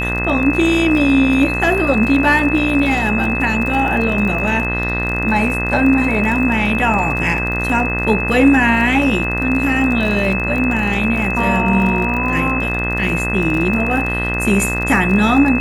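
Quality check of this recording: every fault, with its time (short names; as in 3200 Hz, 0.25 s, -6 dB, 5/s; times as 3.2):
buzz 60 Hz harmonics 35 -22 dBFS
crackle 38/s -22 dBFS
tone 2600 Hz -20 dBFS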